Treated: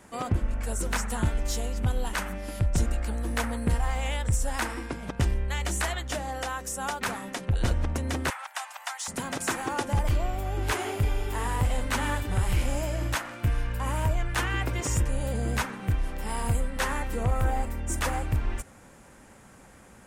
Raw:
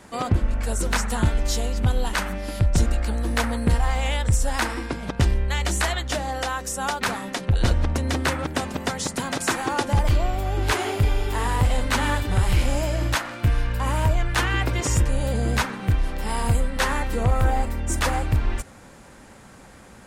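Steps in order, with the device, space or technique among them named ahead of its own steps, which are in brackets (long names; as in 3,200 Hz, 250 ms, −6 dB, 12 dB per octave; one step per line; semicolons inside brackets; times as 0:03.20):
exciter from parts (in parallel at −6 dB: high-pass filter 3,900 Hz 24 dB per octave + soft clipping −26 dBFS, distortion −15 dB)
0:08.30–0:09.08: on the sum: Butterworth high-pass 730 Hz 48 dB per octave
level −5.5 dB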